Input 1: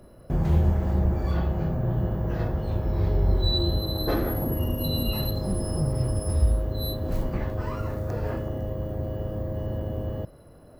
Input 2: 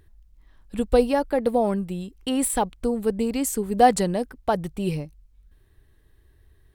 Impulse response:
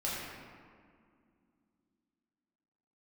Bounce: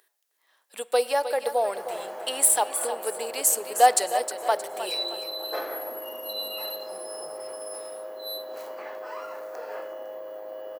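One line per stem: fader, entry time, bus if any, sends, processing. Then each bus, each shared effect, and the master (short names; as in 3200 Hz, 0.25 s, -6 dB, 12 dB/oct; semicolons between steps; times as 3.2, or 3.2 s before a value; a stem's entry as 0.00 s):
-2.0 dB, 1.45 s, send -13 dB, no echo send, notch 3600 Hz, Q 18
-1.0 dB, 0.00 s, send -21 dB, echo send -10 dB, high shelf 4500 Hz +9.5 dB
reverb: on, RT60 2.2 s, pre-delay 4 ms
echo: feedback echo 0.312 s, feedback 38%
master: HPF 520 Hz 24 dB/oct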